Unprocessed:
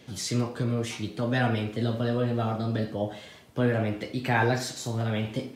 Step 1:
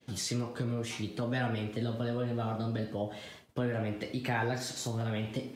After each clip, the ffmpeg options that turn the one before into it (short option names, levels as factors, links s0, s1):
-af "agate=range=0.0224:threshold=0.00501:ratio=3:detection=peak,acompressor=threshold=0.02:ratio=2"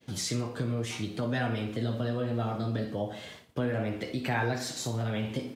-af "aecho=1:1:60|120|180:0.224|0.0761|0.0259,volume=1.26"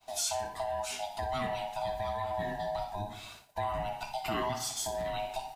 -af "afftfilt=real='real(if(lt(b,1008),b+24*(1-2*mod(floor(b/24),2)),b),0)':imag='imag(if(lt(b,1008),b+24*(1-2*mod(floor(b/24),2)),b),0)':win_size=2048:overlap=0.75,crystalizer=i=1.5:c=0,volume=0.631"